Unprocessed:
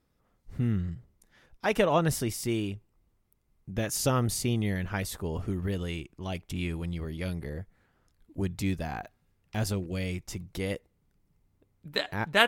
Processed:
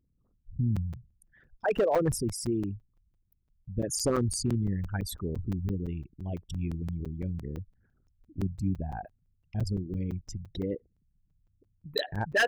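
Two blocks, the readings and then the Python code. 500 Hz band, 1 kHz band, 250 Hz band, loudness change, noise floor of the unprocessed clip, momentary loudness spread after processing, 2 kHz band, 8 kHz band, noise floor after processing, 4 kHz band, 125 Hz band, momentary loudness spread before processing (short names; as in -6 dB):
-0.5 dB, -3.5 dB, -0.5 dB, -1.0 dB, -73 dBFS, 13 LU, -2.5 dB, -1.0 dB, -73 dBFS, -5.0 dB, 0.0 dB, 13 LU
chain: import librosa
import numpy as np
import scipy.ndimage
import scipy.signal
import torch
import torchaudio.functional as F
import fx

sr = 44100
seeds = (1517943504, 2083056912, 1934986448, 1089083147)

y = fx.envelope_sharpen(x, sr, power=3.0)
y = np.clip(y, -10.0 ** (-19.5 / 20.0), 10.0 ** (-19.5 / 20.0))
y = fx.buffer_crackle(y, sr, first_s=0.76, period_s=0.17, block=256, kind='zero')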